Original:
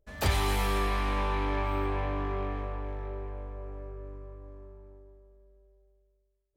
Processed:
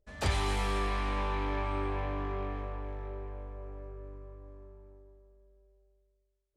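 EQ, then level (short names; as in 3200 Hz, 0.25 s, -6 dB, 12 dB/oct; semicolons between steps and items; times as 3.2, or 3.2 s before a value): LPF 9800 Hz 24 dB/oct; -3.0 dB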